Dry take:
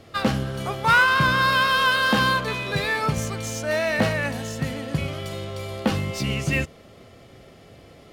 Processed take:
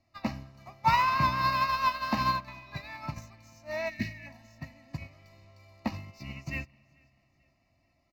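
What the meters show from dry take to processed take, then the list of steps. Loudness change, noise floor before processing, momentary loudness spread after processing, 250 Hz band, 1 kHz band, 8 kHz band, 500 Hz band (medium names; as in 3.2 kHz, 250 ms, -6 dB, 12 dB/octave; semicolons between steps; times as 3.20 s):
-7.5 dB, -49 dBFS, 22 LU, -11.0 dB, -5.0 dB, -18.0 dB, -14.5 dB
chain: static phaser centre 2.2 kHz, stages 8; time-frequency box 3.89–4.27 s, 490–1600 Hz -28 dB; spring tank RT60 3.4 s, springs 37/47 ms, chirp 55 ms, DRR 16.5 dB; dynamic bell 7.7 kHz, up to -6 dB, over -50 dBFS, Q 1.2; comb 3.1 ms, depth 38%; on a send: feedback delay 438 ms, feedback 44%, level -18 dB; on the sum: upward expansion 2.5:1, over -33 dBFS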